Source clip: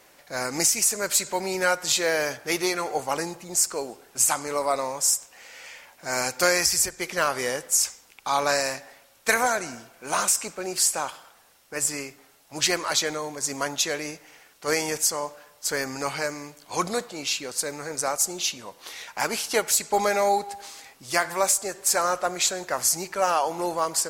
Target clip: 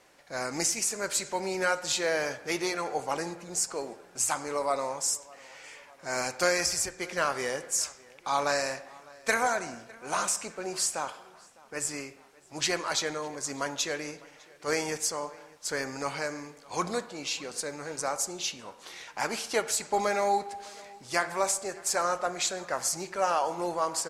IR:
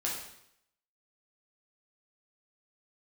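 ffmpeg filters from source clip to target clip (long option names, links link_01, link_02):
-filter_complex "[0:a]lowpass=9200,asplit=2[link_01][link_02];[link_02]adelay=605,lowpass=frequency=3800:poles=1,volume=-23dB,asplit=2[link_03][link_04];[link_04]adelay=605,lowpass=frequency=3800:poles=1,volume=0.55,asplit=2[link_05][link_06];[link_06]adelay=605,lowpass=frequency=3800:poles=1,volume=0.55,asplit=2[link_07][link_08];[link_08]adelay=605,lowpass=frequency=3800:poles=1,volume=0.55[link_09];[link_01][link_03][link_05][link_07][link_09]amix=inputs=5:normalize=0,asplit=2[link_10][link_11];[1:a]atrim=start_sample=2205,lowpass=2700[link_12];[link_11][link_12]afir=irnorm=-1:irlink=0,volume=-13.5dB[link_13];[link_10][link_13]amix=inputs=2:normalize=0,volume=-5.5dB"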